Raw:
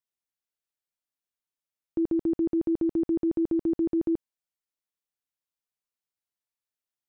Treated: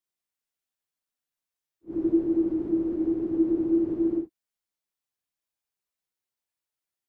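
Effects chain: phase scrambler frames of 0.2 s; gain +2 dB

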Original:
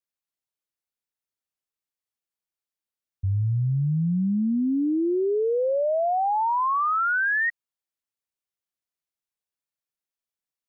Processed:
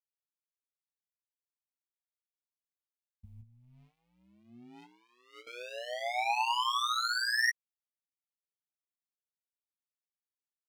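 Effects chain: bell 99 Hz -13 dB 1.2 oct; 3.41–5.47 resonator 140 Hz, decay 0.19 s, harmonics all, mix 90%; power-law curve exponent 1.4; EQ curve 110 Hz 0 dB, 160 Hz -30 dB, 230 Hz -2 dB, 350 Hz -29 dB, 820 Hz -2 dB, 1600 Hz -6 dB, 2300 Hz +13 dB; AM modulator 120 Hz, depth 55%; doubler 16 ms -5 dB; gain -3 dB

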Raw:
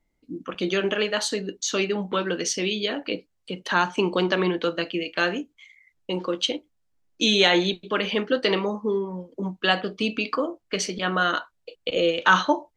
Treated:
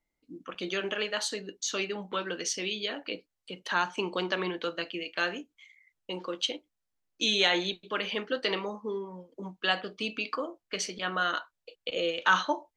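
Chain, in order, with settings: low shelf 440 Hz -8 dB; gain -5 dB

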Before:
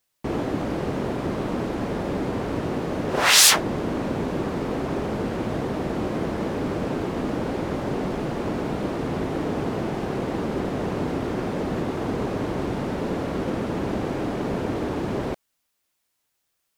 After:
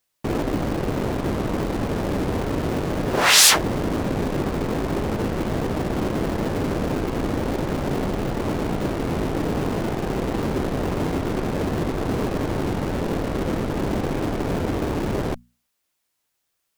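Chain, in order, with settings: notches 60/120/180/240 Hz; in parallel at -3.5 dB: Schmitt trigger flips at -23.5 dBFS

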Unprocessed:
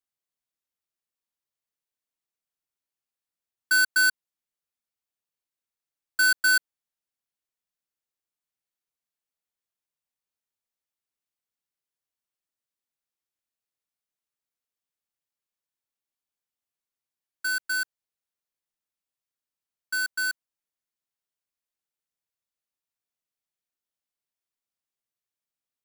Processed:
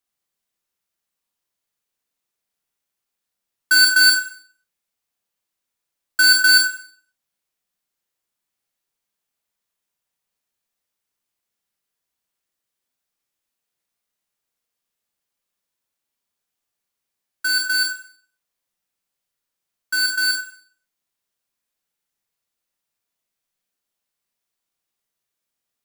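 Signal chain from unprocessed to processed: Schroeder reverb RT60 0.49 s, combs from 32 ms, DRR 1 dB; gain +6.5 dB

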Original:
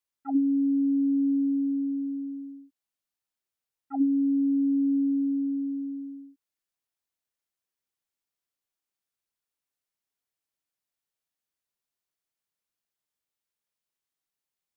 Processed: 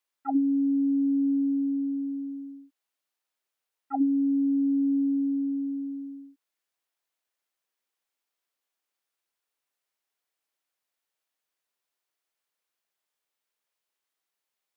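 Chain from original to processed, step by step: tone controls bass -15 dB, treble -4 dB; gain +6 dB

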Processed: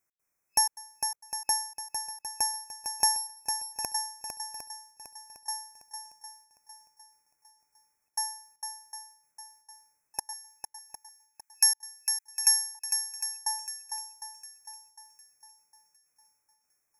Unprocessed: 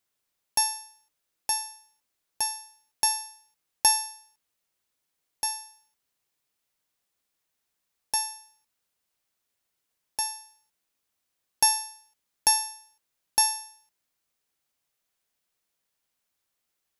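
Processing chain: FFT band-reject 2600–5200 Hz; 10.33–12.75 HPF 1400 Hz 24 dB/oct; step gate "x.xxxxx.xxx" 156 bpm -60 dB; swung echo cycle 0.756 s, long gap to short 1.5:1, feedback 35%, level -7 dB

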